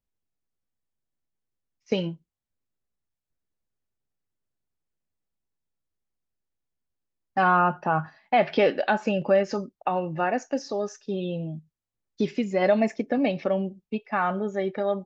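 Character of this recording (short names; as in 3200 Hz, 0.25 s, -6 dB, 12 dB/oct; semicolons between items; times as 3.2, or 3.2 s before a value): noise floor -87 dBFS; spectral tilt -4.5 dB/oct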